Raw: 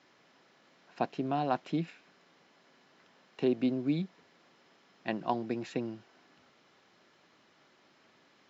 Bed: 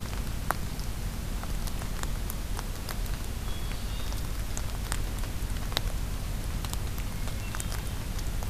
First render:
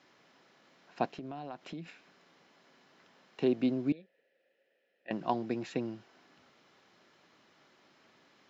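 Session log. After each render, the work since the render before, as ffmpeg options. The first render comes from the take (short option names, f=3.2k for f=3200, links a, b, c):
-filter_complex "[0:a]asettb=1/sr,asplit=3[a][b][c];[a]atrim=end=1.104[d];[b]atrim=start=1.1:end=1.86,asetpts=PTS-STARTPTS,afade=t=in:d=0.004:c=qsin,afade=t=out:st=0.756:d=0.004:c=qsin,acompressor=threshold=-39dB:ratio=6:attack=3.2:release=140:knee=1:detection=peak[e];[c]atrim=start=1.856[f];[d][e]acrossfade=d=0.004:c1=hsin:c2=qsin[g];[g][f]acrossfade=d=0.004:c1=qsin:c2=hsin,asettb=1/sr,asplit=3[h][i][j];[h]atrim=end=3.924[k];[i]atrim=start=3.92:end=5.11,asetpts=PTS-STARTPTS,afade=t=in:d=0.004:c=qsin,afade=t=out:st=1.186:d=0.004:c=qsin,asplit=3[l][m][n];[l]bandpass=f=530:t=q:w=8,volume=0dB[o];[m]bandpass=f=1.84k:t=q:w=8,volume=-6dB[p];[n]bandpass=f=2.48k:t=q:w=8,volume=-9dB[q];[o][p][q]amix=inputs=3:normalize=0[r];[j]atrim=start=5.106[s];[k][r]acrossfade=d=0.004:c1=hsin:c2=qsin[t];[t][s]acrossfade=d=0.004:c1=qsin:c2=hsin"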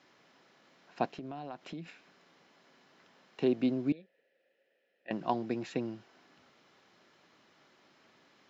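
-af anull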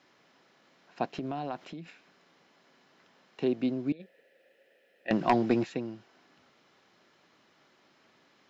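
-filter_complex "[0:a]asplit=3[a][b][c];[a]afade=t=out:st=1.13:d=0.02[d];[b]acontrast=90,afade=t=in:st=1.13:d=0.02,afade=t=out:st=1.64:d=0.02[e];[c]afade=t=in:st=1.64:d=0.02[f];[d][e][f]amix=inputs=3:normalize=0,asplit=3[g][h][i];[g]afade=t=out:st=3.99:d=0.02[j];[h]aeval=exprs='0.168*sin(PI/2*2*val(0)/0.168)':c=same,afade=t=in:st=3.99:d=0.02,afade=t=out:st=5.63:d=0.02[k];[i]afade=t=in:st=5.63:d=0.02[l];[j][k][l]amix=inputs=3:normalize=0"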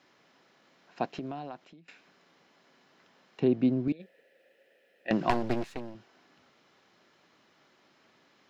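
-filter_complex "[0:a]asettb=1/sr,asplit=3[a][b][c];[a]atrim=end=3.404[d];[b]atrim=start=3.4:end=3.88,asetpts=PTS-STARTPTS,afade=t=in:d=0.004:c=qsin,afade=t=out:st=0.476:d=0.004:c=qsin,aemphasis=mode=reproduction:type=bsi[e];[c]atrim=start=3.876[f];[d][e]acrossfade=d=0.004:c1=hsin:c2=qsin[g];[g][f]acrossfade=d=0.004:c1=qsin:c2=hsin,asettb=1/sr,asplit=3[h][i][j];[h]atrim=end=5.304[k];[i]atrim=start=5.3:end=5.95,asetpts=PTS-STARTPTS,afade=t=in:d=0.004:c=qsin,afade=t=out:st=0.646:d=0.004:c=qsin,aeval=exprs='max(val(0),0)':c=same[l];[j]atrim=start=5.946[m];[k][l]acrossfade=d=0.004:c1=hsin:c2=qsin[n];[n][m]acrossfade=d=0.004:c1=qsin:c2=hsin,asplit=2[o][p];[o]atrim=end=1.88,asetpts=PTS-STARTPTS,afade=t=out:st=1.05:d=0.83:silence=0.112202[q];[p]atrim=start=1.88,asetpts=PTS-STARTPTS,afade=t=in:d=0.004:c=hsin:silence=0.112202[r];[q][r]concat=n=2:v=0:a=1"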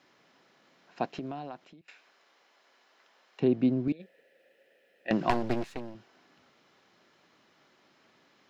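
-filter_complex "[0:a]asettb=1/sr,asplit=3[a][b][c];[a]atrim=end=1.814[d];[b]atrim=start=1.81:end=3.4,asetpts=PTS-STARTPTS,afade=t=in:d=0.004:c=qsin,afade=t=out:st=1.586:d=0.004:c=qsin,highpass=510[e];[c]atrim=start=3.396[f];[d][e]acrossfade=d=0.004:c1=hsin:c2=qsin[g];[g][f]acrossfade=d=0.004:c1=qsin:c2=hsin"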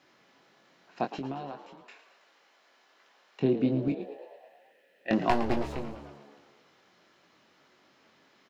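-filter_complex "[0:a]asplit=2[a][b];[b]adelay=22,volume=-6dB[c];[a][c]amix=inputs=2:normalize=0,asplit=2[d][e];[e]asplit=7[f][g][h][i][j][k][l];[f]adelay=111,afreqshift=71,volume=-13dB[m];[g]adelay=222,afreqshift=142,volume=-17dB[n];[h]adelay=333,afreqshift=213,volume=-21dB[o];[i]adelay=444,afreqshift=284,volume=-25dB[p];[j]adelay=555,afreqshift=355,volume=-29.1dB[q];[k]adelay=666,afreqshift=426,volume=-33.1dB[r];[l]adelay=777,afreqshift=497,volume=-37.1dB[s];[m][n][o][p][q][r][s]amix=inputs=7:normalize=0[t];[d][t]amix=inputs=2:normalize=0"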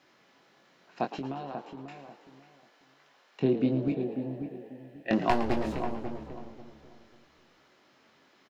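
-filter_complex "[0:a]asplit=2[a][b];[b]adelay=541,lowpass=f=1k:p=1,volume=-7.5dB,asplit=2[c][d];[d]adelay=541,lowpass=f=1k:p=1,volume=0.25,asplit=2[e][f];[f]adelay=541,lowpass=f=1k:p=1,volume=0.25[g];[a][c][e][g]amix=inputs=4:normalize=0"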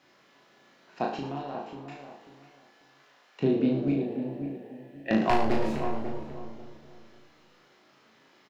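-filter_complex "[0:a]asplit=2[a][b];[b]adelay=36,volume=-3dB[c];[a][c]amix=inputs=2:normalize=0,asplit=2[d][e];[e]aecho=0:1:72:0.355[f];[d][f]amix=inputs=2:normalize=0"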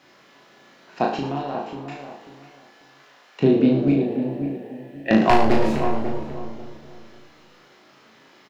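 -af "volume=8dB"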